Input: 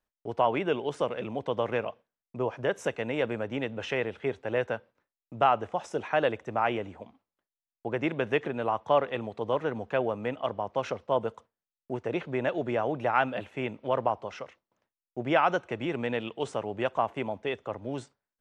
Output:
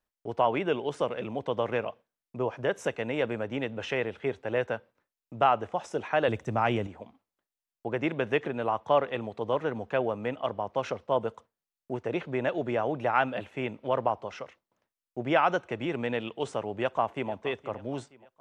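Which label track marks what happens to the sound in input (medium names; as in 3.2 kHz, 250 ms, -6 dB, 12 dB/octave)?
6.280000	6.870000	tone controls bass +10 dB, treble +9 dB
16.770000	17.310000	echo throw 470 ms, feedback 45%, level -17 dB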